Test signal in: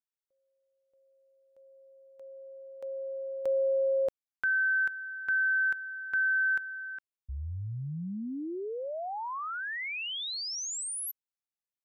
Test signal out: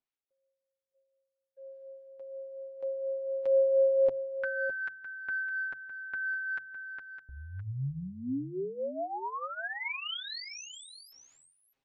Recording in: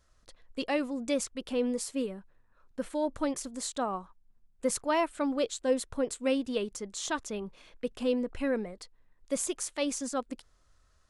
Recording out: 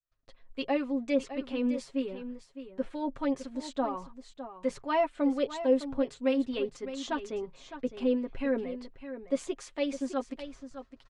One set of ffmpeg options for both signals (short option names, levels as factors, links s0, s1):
-filter_complex "[0:a]agate=range=0.00178:threshold=0.00178:ratio=3:release=182:detection=rms,bandreject=f=50:t=h:w=6,bandreject=f=100:t=h:w=6,bandreject=f=150:t=h:w=6,areverse,acompressor=mode=upward:threshold=0.00794:ratio=2.5:attack=30:release=549:knee=2.83:detection=peak,areverse,acrossover=split=1000[s0][s1];[s0]aeval=exprs='val(0)*(1-0.5/2+0.5/2*cos(2*PI*4.2*n/s))':c=same[s2];[s1]aeval=exprs='val(0)*(1-0.5/2-0.5/2*cos(2*PI*4.2*n/s))':c=same[s3];[s2][s3]amix=inputs=2:normalize=0,lowpass=3300,acontrast=49,equalizer=f=1400:t=o:w=0.61:g=-3,aecho=1:1:7.4:0.66,asplit=2[s4][s5];[s5]aecho=0:1:609:0.266[s6];[s4][s6]amix=inputs=2:normalize=0,volume=0.562"